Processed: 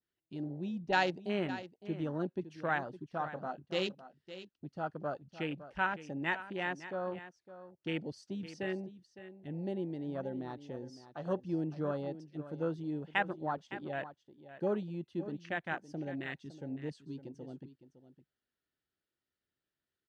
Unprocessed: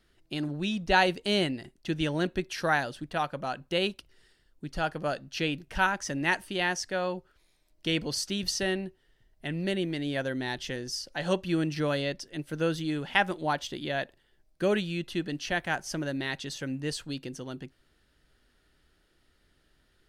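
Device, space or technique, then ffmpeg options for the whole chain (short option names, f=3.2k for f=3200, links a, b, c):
over-cleaned archive recording: -filter_complex "[0:a]adynamicequalizer=threshold=0.00794:dfrequency=3000:dqfactor=1:tfrequency=3000:tqfactor=1:attack=5:release=100:ratio=0.375:range=1.5:mode=cutabove:tftype=bell,asettb=1/sr,asplit=3[a][b][c];[a]atrim=end=3.234[d];[b]atrim=start=3.23:end=3.89,asetpts=PTS-STARTPTS,afade=t=in:d=0.004:c=qsin,afade=t=out:st=0.656:d=0.004:c=qsin,asplit=2[e][f];[f]adelay=27,volume=-8.5dB[g];[e][g]amix=inputs=2:normalize=0,atrim=end_sample=29106[h];[c]atrim=start=3.886[i];[d][h]acrossfade=d=0.004:c1=hsin:c2=qsin[j];[j][i]acrossfade=d=0.004:c1=qsin:c2=hsin,highpass=100,lowpass=6.7k,afwtdn=0.0251,aecho=1:1:560:0.2,volume=-6.5dB"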